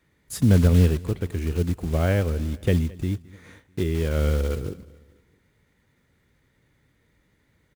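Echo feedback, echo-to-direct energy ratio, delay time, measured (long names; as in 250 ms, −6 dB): 50%, −21.5 dB, 218 ms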